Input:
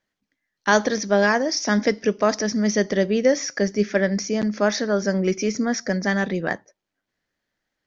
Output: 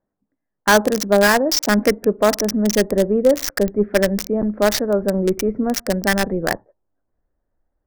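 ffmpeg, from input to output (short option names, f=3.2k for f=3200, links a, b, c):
-filter_complex "[0:a]acrossover=split=1100[a][b];[b]acrusher=bits=3:mix=0:aa=0.000001[c];[a][c]amix=inputs=2:normalize=0,asubboost=boost=7:cutoff=62,acontrast=36"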